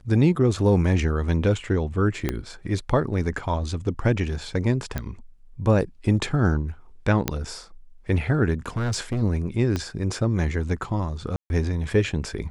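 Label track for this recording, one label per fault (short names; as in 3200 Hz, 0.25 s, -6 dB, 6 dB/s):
2.290000	2.290000	pop -10 dBFS
4.980000	4.980000	pop -14 dBFS
7.280000	7.280000	pop -6 dBFS
8.660000	9.230000	clipped -21 dBFS
9.760000	9.760000	pop -13 dBFS
11.360000	11.500000	gap 0.141 s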